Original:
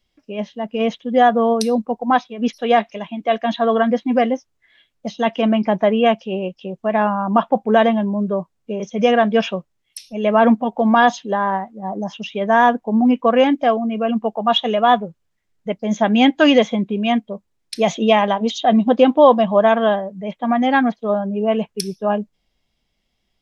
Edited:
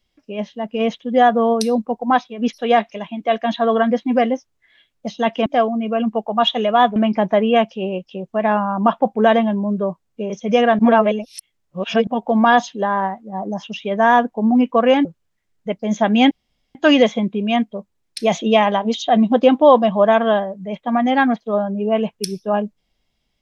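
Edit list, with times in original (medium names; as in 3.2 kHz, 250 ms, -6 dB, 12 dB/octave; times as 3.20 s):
9.29–10.57 s: reverse
13.55–15.05 s: move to 5.46 s
16.31 s: insert room tone 0.44 s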